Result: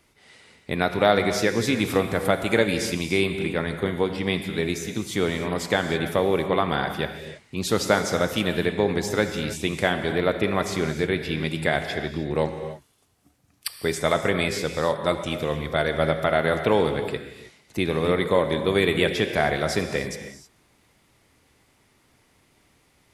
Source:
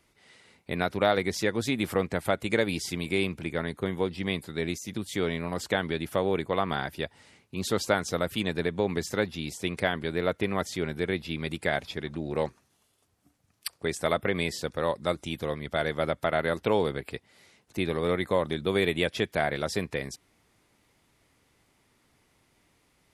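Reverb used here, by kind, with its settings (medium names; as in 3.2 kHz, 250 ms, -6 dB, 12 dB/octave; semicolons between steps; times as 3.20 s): gated-style reverb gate 340 ms flat, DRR 6.5 dB; trim +4.5 dB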